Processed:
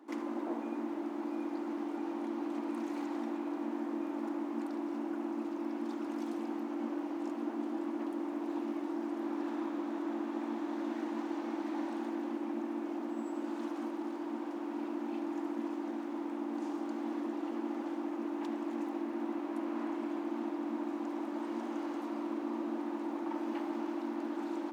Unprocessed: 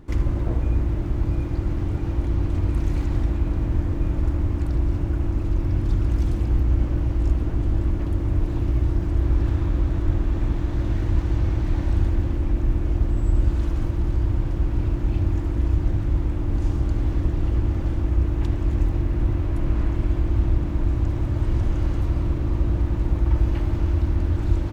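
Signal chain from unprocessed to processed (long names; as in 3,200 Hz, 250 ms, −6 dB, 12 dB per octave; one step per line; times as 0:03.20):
Chebyshev high-pass with heavy ripple 220 Hz, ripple 9 dB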